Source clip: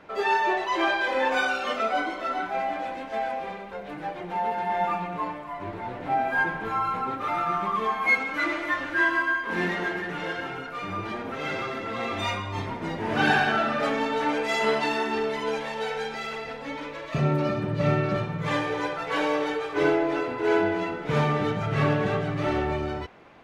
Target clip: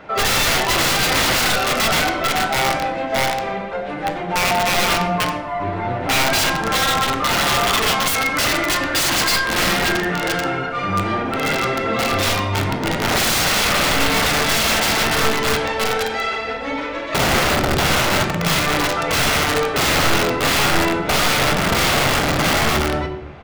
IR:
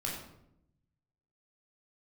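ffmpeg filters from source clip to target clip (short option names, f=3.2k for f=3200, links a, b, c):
-filter_complex "[0:a]aresample=22050,aresample=44100,aeval=exprs='(mod(13.3*val(0)+1,2)-1)/13.3':c=same,asplit=2[a][b];[1:a]atrim=start_sample=2205,lowpass=7.1k[c];[b][c]afir=irnorm=-1:irlink=0,volume=-4.5dB[d];[a][d]amix=inputs=2:normalize=0,volume=7dB"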